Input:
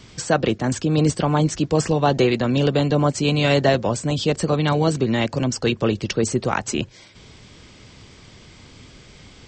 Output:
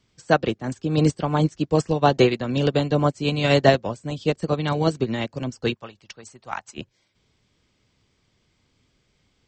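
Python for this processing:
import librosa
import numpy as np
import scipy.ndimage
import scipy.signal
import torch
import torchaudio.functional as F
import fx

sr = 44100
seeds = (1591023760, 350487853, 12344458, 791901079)

y = fx.dmg_buzz(x, sr, base_hz=400.0, harmonics=27, level_db=-53.0, tilt_db=-9, odd_only=False, at=(0.57, 1.47), fade=0.02)
y = fx.low_shelf_res(y, sr, hz=580.0, db=-8.5, q=1.5, at=(5.74, 6.76), fade=0.02)
y = fx.upward_expand(y, sr, threshold_db=-30.0, expansion=2.5)
y = y * 10.0 ** (3.0 / 20.0)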